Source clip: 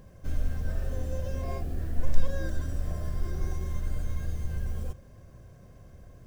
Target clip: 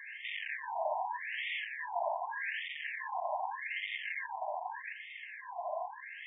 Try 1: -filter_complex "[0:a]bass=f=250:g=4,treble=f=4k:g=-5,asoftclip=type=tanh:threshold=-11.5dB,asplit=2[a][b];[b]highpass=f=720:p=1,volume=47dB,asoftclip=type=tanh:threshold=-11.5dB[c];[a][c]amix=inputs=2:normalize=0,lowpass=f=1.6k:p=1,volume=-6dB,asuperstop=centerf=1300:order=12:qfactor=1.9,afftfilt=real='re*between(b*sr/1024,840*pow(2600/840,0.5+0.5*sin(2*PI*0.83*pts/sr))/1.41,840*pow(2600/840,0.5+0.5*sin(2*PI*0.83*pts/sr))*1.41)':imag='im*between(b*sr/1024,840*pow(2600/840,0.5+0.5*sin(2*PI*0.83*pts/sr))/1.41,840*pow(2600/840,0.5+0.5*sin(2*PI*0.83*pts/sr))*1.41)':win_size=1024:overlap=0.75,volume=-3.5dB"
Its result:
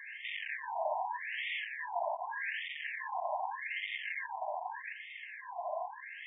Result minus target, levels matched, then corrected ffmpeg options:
soft clip: distortion +11 dB
-filter_complex "[0:a]bass=f=250:g=4,treble=f=4k:g=-5,asoftclip=type=tanh:threshold=-3dB,asplit=2[a][b];[b]highpass=f=720:p=1,volume=47dB,asoftclip=type=tanh:threshold=-11.5dB[c];[a][c]amix=inputs=2:normalize=0,lowpass=f=1.6k:p=1,volume=-6dB,asuperstop=centerf=1300:order=12:qfactor=1.9,afftfilt=real='re*between(b*sr/1024,840*pow(2600/840,0.5+0.5*sin(2*PI*0.83*pts/sr))/1.41,840*pow(2600/840,0.5+0.5*sin(2*PI*0.83*pts/sr))*1.41)':imag='im*between(b*sr/1024,840*pow(2600/840,0.5+0.5*sin(2*PI*0.83*pts/sr))/1.41,840*pow(2600/840,0.5+0.5*sin(2*PI*0.83*pts/sr))*1.41)':win_size=1024:overlap=0.75,volume=-3.5dB"

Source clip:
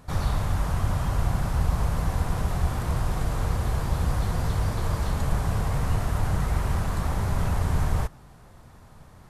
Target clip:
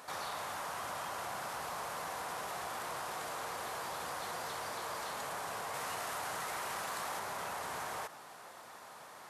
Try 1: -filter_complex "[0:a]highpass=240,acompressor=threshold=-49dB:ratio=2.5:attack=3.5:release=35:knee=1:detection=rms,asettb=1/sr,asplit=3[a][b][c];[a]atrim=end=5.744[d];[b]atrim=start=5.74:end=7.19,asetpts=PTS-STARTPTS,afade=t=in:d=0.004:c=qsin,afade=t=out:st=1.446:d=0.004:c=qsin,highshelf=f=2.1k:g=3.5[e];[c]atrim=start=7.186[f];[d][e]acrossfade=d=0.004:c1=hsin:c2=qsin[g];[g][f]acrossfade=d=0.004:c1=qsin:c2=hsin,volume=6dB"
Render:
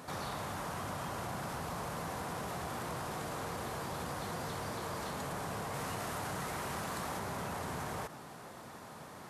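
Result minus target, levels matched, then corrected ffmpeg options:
250 Hz band +11.0 dB
-filter_complex "[0:a]highpass=610,acompressor=threshold=-49dB:ratio=2.5:attack=3.5:release=35:knee=1:detection=rms,asettb=1/sr,asplit=3[a][b][c];[a]atrim=end=5.744[d];[b]atrim=start=5.74:end=7.19,asetpts=PTS-STARTPTS,afade=t=in:d=0.004:c=qsin,afade=t=out:st=1.446:d=0.004:c=qsin,highshelf=f=2.1k:g=3.5[e];[c]atrim=start=7.186[f];[d][e]acrossfade=d=0.004:c1=hsin:c2=qsin[g];[g][f]acrossfade=d=0.004:c1=qsin:c2=hsin,volume=6dB"

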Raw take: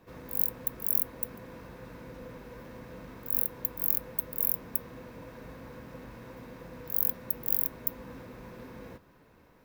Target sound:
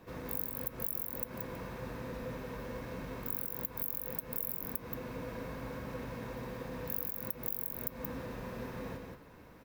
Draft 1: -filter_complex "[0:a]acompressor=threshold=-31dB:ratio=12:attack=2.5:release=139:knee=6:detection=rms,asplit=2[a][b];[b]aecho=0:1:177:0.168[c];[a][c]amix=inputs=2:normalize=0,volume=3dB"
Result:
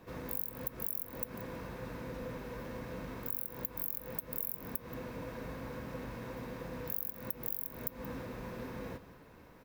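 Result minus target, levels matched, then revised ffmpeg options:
echo-to-direct -11 dB
-filter_complex "[0:a]acompressor=threshold=-31dB:ratio=12:attack=2.5:release=139:knee=6:detection=rms,asplit=2[a][b];[b]aecho=0:1:177:0.596[c];[a][c]amix=inputs=2:normalize=0,volume=3dB"

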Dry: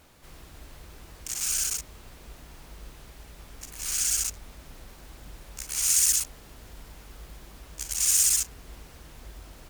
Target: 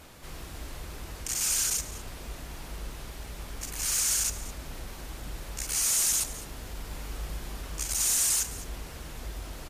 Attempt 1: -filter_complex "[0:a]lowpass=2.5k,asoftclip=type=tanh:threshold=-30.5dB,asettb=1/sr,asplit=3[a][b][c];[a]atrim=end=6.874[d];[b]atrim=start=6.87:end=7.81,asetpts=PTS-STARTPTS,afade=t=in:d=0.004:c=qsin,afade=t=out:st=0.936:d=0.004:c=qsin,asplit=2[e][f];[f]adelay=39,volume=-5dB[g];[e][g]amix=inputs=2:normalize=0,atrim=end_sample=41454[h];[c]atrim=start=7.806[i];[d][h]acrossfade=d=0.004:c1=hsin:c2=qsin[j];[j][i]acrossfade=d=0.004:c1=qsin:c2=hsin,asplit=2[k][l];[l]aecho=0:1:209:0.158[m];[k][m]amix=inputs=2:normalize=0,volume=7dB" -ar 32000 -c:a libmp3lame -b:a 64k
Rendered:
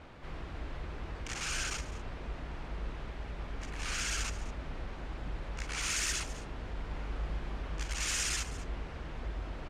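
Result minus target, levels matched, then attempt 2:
2000 Hz band +13.0 dB
-filter_complex "[0:a]asoftclip=type=tanh:threshold=-30.5dB,asettb=1/sr,asplit=3[a][b][c];[a]atrim=end=6.874[d];[b]atrim=start=6.87:end=7.81,asetpts=PTS-STARTPTS,afade=t=in:d=0.004:c=qsin,afade=t=out:st=0.936:d=0.004:c=qsin,asplit=2[e][f];[f]adelay=39,volume=-5dB[g];[e][g]amix=inputs=2:normalize=0,atrim=end_sample=41454[h];[c]atrim=start=7.806[i];[d][h]acrossfade=d=0.004:c1=hsin:c2=qsin[j];[j][i]acrossfade=d=0.004:c1=qsin:c2=hsin,asplit=2[k][l];[l]aecho=0:1:209:0.158[m];[k][m]amix=inputs=2:normalize=0,volume=7dB" -ar 32000 -c:a libmp3lame -b:a 64k

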